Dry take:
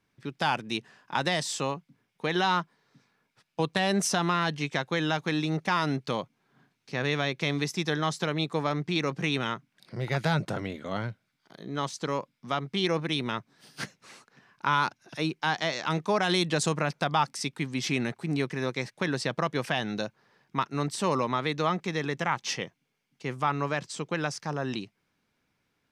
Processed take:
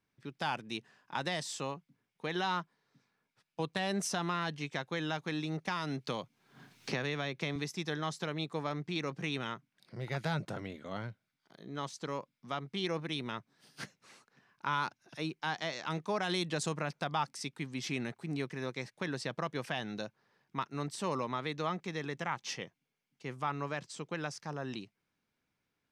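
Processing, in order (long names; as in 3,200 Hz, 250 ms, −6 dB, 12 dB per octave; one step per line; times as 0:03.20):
0:05.67–0:07.56: multiband upward and downward compressor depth 100%
level −8 dB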